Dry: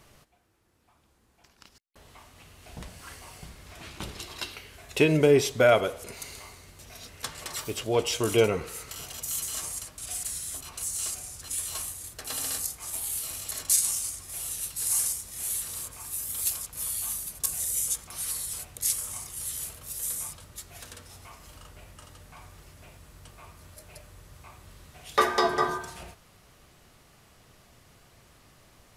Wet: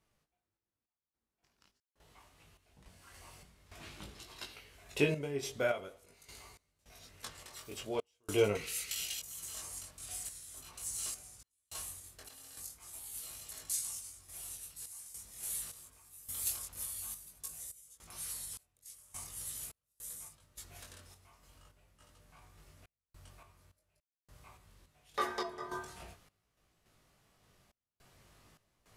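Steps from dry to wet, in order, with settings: 8.55–9.20 s: resonant high shelf 1.7 kHz +13 dB, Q 1.5; chorus 0.45 Hz, delay 18.5 ms, depth 3.6 ms; random-step tremolo, depth 100%; trim -3.5 dB

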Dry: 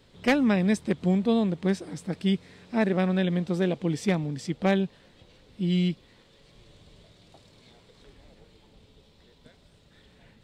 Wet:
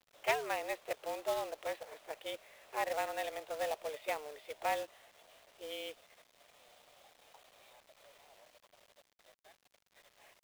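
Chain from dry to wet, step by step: in parallel at -1.5 dB: level held to a coarse grid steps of 19 dB; on the sum: mistuned SSB +150 Hz 370–3300 Hz; companded quantiser 4-bit; overload inside the chain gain 15 dB; trim -8.5 dB

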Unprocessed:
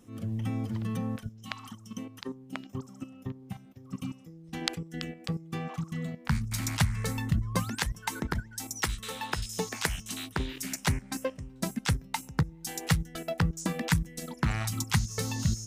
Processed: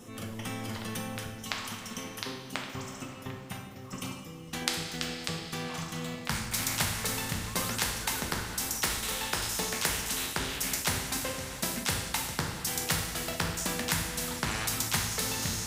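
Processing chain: two-slope reverb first 0.49 s, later 4.2 s, from -18 dB, DRR 0.5 dB; spectrum-flattening compressor 2:1

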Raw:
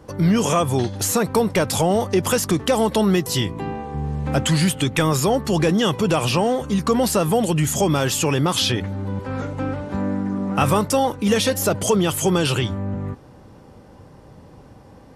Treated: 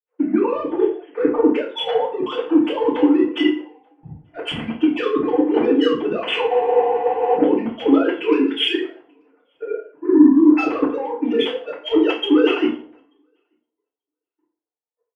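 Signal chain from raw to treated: formants replaced by sine waves; in parallel at +3 dB: peak limiter -12.5 dBFS, peak gain reduction 11 dB; on the sum: saturation -5.5 dBFS, distortion -17 dB; level held to a coarse grid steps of 21 dB; dynamic bell 350 Hz, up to +7 dB, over -36 dBFS, Q 1.6; on a send: feedback delay 886 ms, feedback 20%, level -24 dB; on the sum: spectral replace 8.37–8.68 s, 430–1300 Hz after; FDN reverb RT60 0.59 s, low-frequency decay 1×, high-frequency decay 0.8×, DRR -8.5 dB; spectral freeze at 6.51 s, 0.86 s; three bands expanded up and down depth 100%; trim -10.5 dB

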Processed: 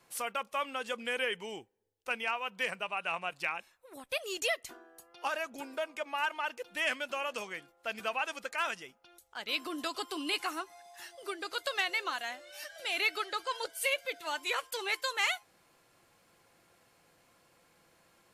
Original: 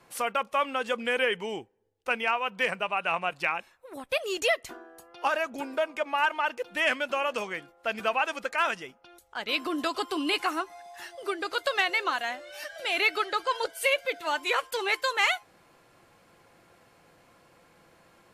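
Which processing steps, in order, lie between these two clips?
treble shelf 3.2 kHz +8.5 dB; trim -8.5 dB

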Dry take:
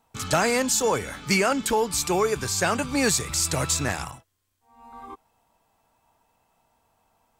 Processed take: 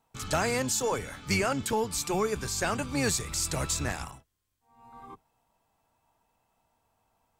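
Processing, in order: octave divider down 1 oct, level -3 dB; trim -6 dB

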